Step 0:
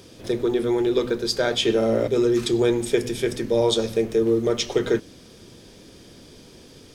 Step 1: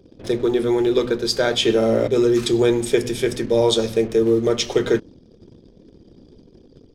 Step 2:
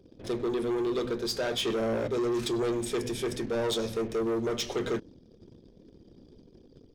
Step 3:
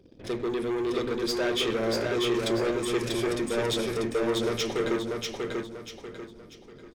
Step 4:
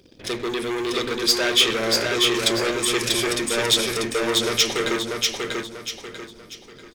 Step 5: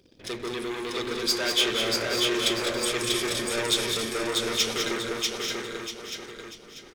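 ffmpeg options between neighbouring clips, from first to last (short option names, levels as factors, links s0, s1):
-af "anlmdn=0.1,volume=1.41"
-af "asoftclip=type=tanh:threshold=0.119,volume=0.473"
-filter_complex "[0:a]equalizer=f=2100:w=1.3:g=5.5,asplit=2[s0][s1];[s1]aecho=0:1:641|1282|1923|2564|3205:0.708|0.255|0.0917|0.033|0.0119[s2];[s0][s2]amix=inputs=2:normalize=0"
-af "tiltshelf=f=1400:g=-7,volume=2.51"
-af "aecho=1:1:179|204|275|884:0.282|0.447|0.133|0.355,volume=0.473"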